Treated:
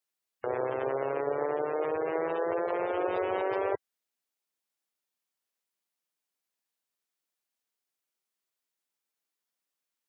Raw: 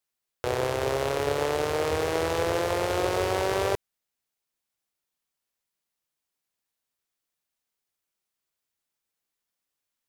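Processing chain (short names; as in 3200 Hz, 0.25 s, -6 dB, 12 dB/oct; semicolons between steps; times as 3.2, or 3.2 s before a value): HPF 190 Hz 12 dB/oct; spectral gate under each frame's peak -20 dB strong; gain -3 dB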